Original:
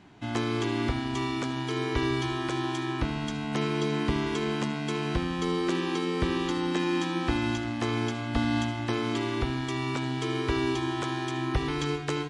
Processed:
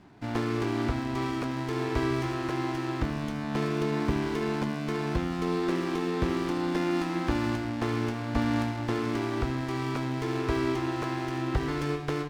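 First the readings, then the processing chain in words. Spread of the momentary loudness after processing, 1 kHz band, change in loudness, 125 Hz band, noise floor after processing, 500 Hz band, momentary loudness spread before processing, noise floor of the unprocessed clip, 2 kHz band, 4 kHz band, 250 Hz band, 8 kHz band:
3 LU, -0.5 dB, -0.5 dB, 0.0 dB, -34 dBFS, 0.0 dB, 3 LU, -33 dBFS, -2.0 dB, -6.0 dB, 0.0 dB, -4.0 dB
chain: LPF 4700 Hz; running maximum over 9 samples

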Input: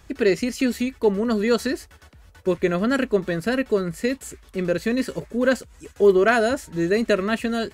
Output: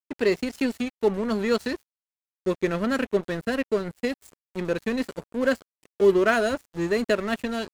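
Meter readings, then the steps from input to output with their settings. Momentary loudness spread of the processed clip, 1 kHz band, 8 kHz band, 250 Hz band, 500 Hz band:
10 LU, -3.0 dB, -6.5 dB, -4.0 dB, -3.5 dB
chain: vibrato 0.6 Hz 32 cents; crossover distortion -33 dBFS; gain -2 dB

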